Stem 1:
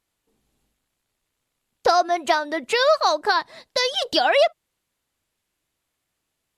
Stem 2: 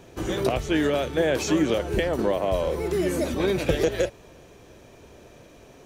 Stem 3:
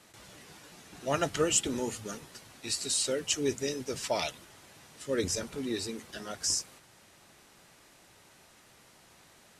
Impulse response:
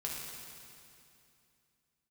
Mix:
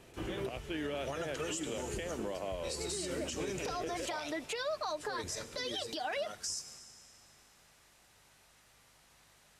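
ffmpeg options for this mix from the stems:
-filter_complex "[0:a]aecho=1:1:6.6:0.57,acompressor=threshold=-24dB:ratio=6,adelay=1800,volume=-6dB[a];[1:a]highshelf=f=3.7k:t=q:w=3:g=-7,alimiter=limit=-16.5dB:level=0:latency=1:release=441,volume=-10dB[b];[2:a]equalizer=f=250:t=o:w=1.9:g=-7,aeval=exprs='val(0)+0.000355*(sin(2*PI*50*n/s)+sin(2*PI*2*50*n/s)/2+sin(2*PI*3*50*n/s)/3+sin(2*PI*4*50*n/s)/4+sin(2*PI*5*50*n/s)/5)':c=same,volume=-6.5dB,asplit=2[c][d];[d]volume=-11dB[e];[3:a]atrim=start_sample=2205[f];[e][f]afir=irnorm=-1:irlink=0[g];[a][b][c][g]amix=inputs=4:normalize=0,alimiter=level_in=4.5dB:limit=-24dB:level=0:latency=1:release=83,volume=-4.5dB"

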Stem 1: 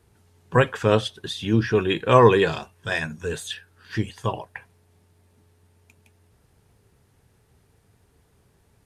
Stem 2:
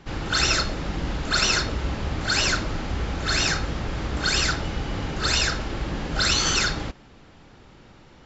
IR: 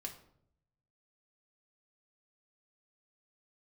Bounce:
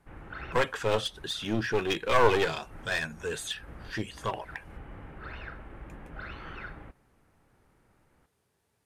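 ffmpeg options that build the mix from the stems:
-filter_complex "[0:a]highpass=f=220:p=1,aeval=exprs='clip(val(0),-1,0.0562)':c=same,agate=range=-7dB:threshold=-59dB:ratio=16:detection=peak,volume=-2dB,asplit=2[a][b];[1:a]lowpass=f=2.2k:w=0.5412,lowpass=f=2.2k:w=1.3066,volume=-15dB[c];[b]apad=whole_len=364261[d];[c][d]sidechaincompress=threshold=-46dB:ratio=8:attack=6.3:release=137[e];[a][e]amix=inputs=2:normalize=0,equalizer=f=220:t=o:w=2.8:g=-2.5"

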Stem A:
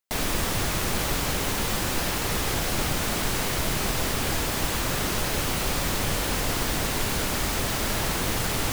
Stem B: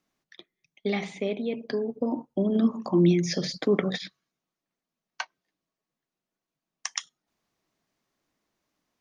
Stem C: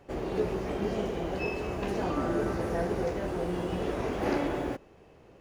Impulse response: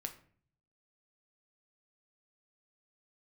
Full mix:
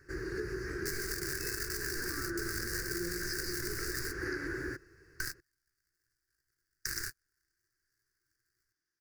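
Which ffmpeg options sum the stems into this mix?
-filter_complex "[0:a]flanger=delay=16:depth=5.8:speed=0.48,acrusher=bits=5:dc=4:mix=0:aa=0.000001,volume=-6dB[a];[1:a]volume=-12dB,asplit=2[b][c];[2:a]volume=-2dB[d];[c]apad=whole_len=384683[e];[a][e]sidechaingate=range=-51dB:threshold=-54dB:ratio=16:detection=peak[f];[f][b][d]amix=inputs=3:normalize=0,firequalizer=gain_entry='entry(130,0);entry(210,-17);entry(350,2);entry(660,-29);entry(1600,14);entry(2300,-6);entry(3300,-23);entry(4700,9);entry(6700,4)':delay=0.05:min_phase=1,acompressor=threshold=-33dB:ratio=6"

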